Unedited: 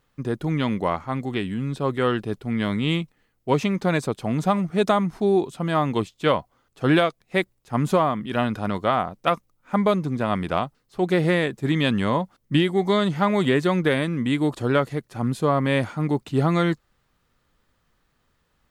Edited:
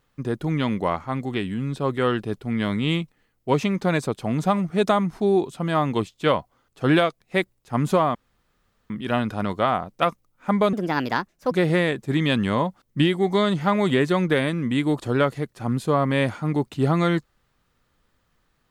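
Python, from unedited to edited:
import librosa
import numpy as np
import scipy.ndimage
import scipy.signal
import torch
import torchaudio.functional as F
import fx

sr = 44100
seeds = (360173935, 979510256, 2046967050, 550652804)

y = fx.edit(x, sr, fx.insert_room_tone(at_s=8.15, length_s=0.75),
    fx.speed_span(start_s=9.98, length_s=1.08, speed=1.38), tone=tone)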